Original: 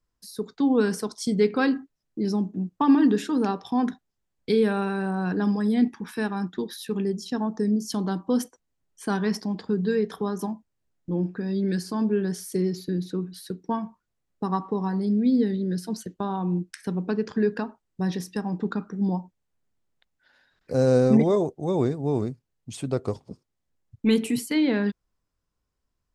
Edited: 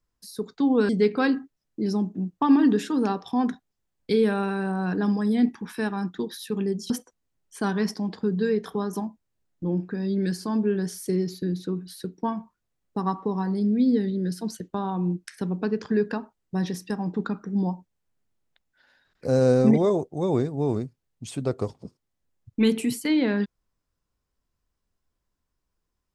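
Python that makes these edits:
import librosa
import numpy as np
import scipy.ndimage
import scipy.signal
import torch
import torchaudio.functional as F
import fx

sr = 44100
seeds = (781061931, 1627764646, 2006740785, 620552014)

y = fx.edit(x, sr, fx.cut(start_s=0.89, length_s=0.39),
    fx.cut(start_s=7.29, length_s=1.07), tone=tone)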